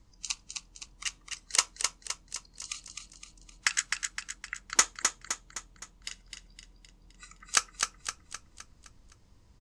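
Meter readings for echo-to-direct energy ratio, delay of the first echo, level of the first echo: −4.0 dB, 258 ms, −5.0 dB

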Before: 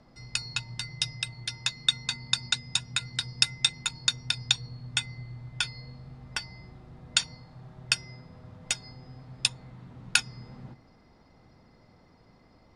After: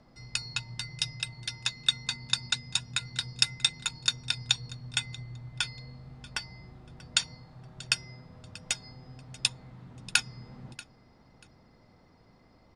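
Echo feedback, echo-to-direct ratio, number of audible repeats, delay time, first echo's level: 21%, −20.0 dB, 2, 636 ms, −20.0 dB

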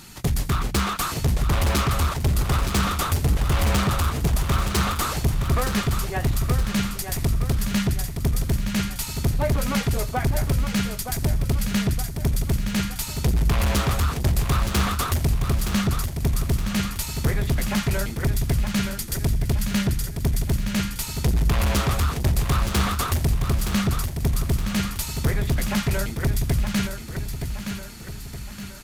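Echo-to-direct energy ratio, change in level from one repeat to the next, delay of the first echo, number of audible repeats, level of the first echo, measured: −6.5 dB, −6.5 dB, 919 ms, 4, −7.5 dB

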